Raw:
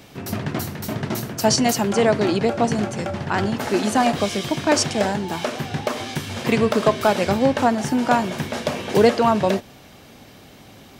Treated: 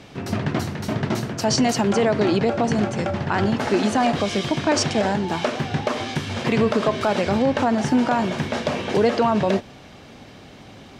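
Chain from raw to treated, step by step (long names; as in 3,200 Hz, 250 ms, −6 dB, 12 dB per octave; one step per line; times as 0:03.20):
high-frequency loss of the air 69 metres
brickwall limiter −12.5 dBFS, peak gain reduction 6.5 dB
level +2.5 dB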